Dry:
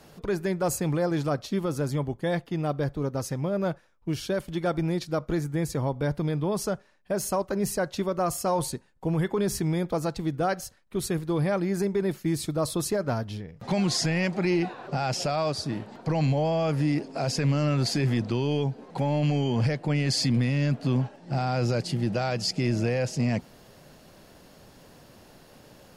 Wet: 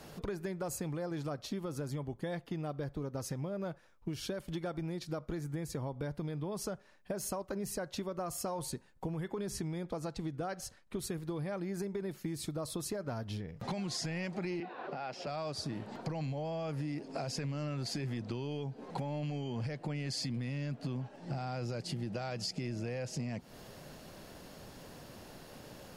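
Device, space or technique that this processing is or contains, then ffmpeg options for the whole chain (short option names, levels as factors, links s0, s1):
serial compression, peaks first: -filter_complex "[0:a]asettb=1/sr,asplit=3[s0][s1][s2];[s0]atrim=end=9.504[s3];[s1]atrim=start=9.5:end=10.99,asetpts=PTS-STARTPTS,afade=t=in:d=0.004:c=qsin,afade=t=out:st=1.486:d=0.004:c=qsin,lowpass=11000[s4];[s2]atrim=start=10.986[s5];[s3][s4]acrossfade=d=0.004:c1=hsin:c2=qsin[s6];[s6][s5]acrossfade=d=0.004:c1=qsin:c2=hsin,acompressor=threshold=0.0251:ratio=6,acompressor=threshold=0.00794:ratio=1.5,asettb=1/sr,asplit=3[s7][s8][s9];[s7]atrim=end=14.604[s10];[s8]atrim=start=14.6:end=15.27,asetpts=PTS-STARTPTS,afade=t=in:d=0.004:c=qsin,afade=t=out:st=0.666:d=0.004:c=qsin,acrossover=split=210 4200:gain=0.126 1 0.0794[s11][s12][s13];[s11][s12][s13]amix=inputs=3:normalize=0[s14];[s9]atrim=start=15.266[s15];[s10][s14]acrossfade=d=0.004:c1=hsin:c2=qsin[s16];[s16][s15]acrossfade=d=0.004:c1=qsin:c2=hsin,volume=1.12"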